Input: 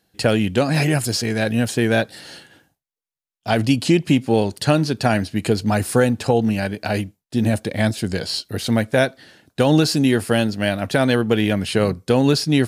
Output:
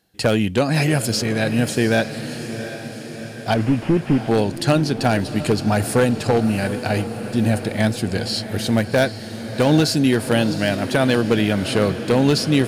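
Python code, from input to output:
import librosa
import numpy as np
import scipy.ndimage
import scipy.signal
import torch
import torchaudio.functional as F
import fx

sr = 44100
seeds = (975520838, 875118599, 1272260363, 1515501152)

y = fx.delta_mod(x, sr, bps=16000, step_db=-31.5, at=(3.54, 4.28))
y = 10.0 ** (-7.5 / 20.0) * (np.abs((y / 10.0 ** (-7.5 / 20.0) + 3.0) % 4.0 - 2.0) - 1.0)
y = fx.echo_diffused(y, sr, ms=732, feedback_pct=64, wet_db=-11.5)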